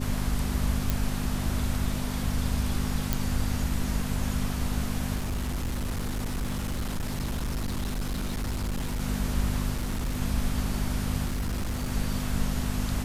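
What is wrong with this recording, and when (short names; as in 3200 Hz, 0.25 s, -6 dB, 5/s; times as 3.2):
hum 50 Hz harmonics 5 -32 dBFS
0.9 pop
3.13 pop
5.15–9 clipped -26.5 dBFS
9.75–10.21 clipped -25.5 dBFS
11.25–11.92 clipped -26 dBFS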